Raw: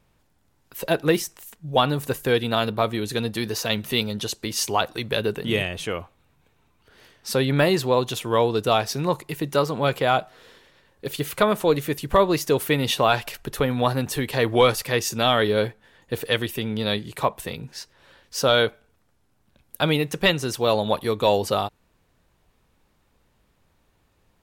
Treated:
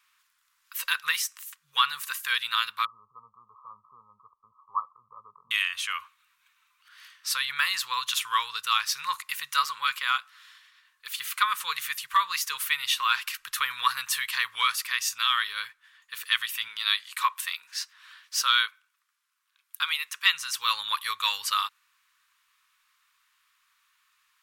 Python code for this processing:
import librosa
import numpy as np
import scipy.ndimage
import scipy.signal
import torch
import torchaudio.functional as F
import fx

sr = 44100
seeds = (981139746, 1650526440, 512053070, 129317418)

y = fx.brickwall_lowpass(x, sr, high_hz=1300.0, at=(2.85, 5.51))
y = fx.highpass(y, sr, hz=270.0, slope=24, at=(16.68, 20.34))
y = scipy.signal.sosfilt(scipy.signal.ellip(4, 1.0, 40, 1100.0, 'highpass', fs=sr, output='sos'), y)
y = fx.rider(y, sr, range_db=3, speed_s=0.5)
y = y * librosa.db_to_amplitude(2.0)